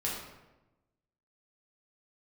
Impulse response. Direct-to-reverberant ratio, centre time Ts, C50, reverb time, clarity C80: -5.5 dB, 59 ms, 1.5 dB, 1.0 s, 4.5 dB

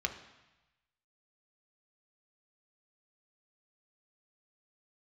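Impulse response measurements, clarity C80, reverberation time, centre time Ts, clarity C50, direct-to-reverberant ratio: 12.5 dB, 1.0 s, 16 ms, 10.0 dB, 3.5 dB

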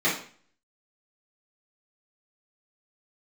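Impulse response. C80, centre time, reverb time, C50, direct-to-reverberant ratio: 11.0 dB, 33 ms, 0.45 s, 5.5 dB, -10.0 dB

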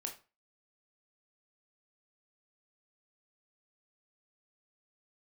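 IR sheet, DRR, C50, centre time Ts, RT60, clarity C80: 3.0 dB, 10.0 dB, 16 ms, 0.30 s, 16.0 dB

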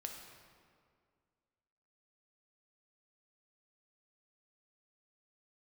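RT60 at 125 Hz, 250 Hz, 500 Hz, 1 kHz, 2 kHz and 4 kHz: 2.2 s, 2.3 s, 2.2 s, 2.0 s, 1.7 s, 1.3 s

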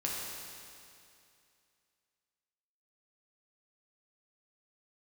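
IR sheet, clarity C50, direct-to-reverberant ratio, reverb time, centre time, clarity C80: -1.0 dB, -4.0 dB, 2.5 s, 135 ms, 0.5 dB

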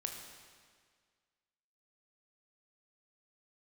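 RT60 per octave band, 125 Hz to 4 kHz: 1.8 s, 1.8 s, 1.8 s, 1.8 s, 1.8 s, 1.7 s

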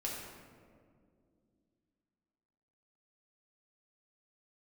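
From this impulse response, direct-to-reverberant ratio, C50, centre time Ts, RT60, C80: -4.0 dB, 0.5 dB, 85 ms, 2.2 s, 2.5 dB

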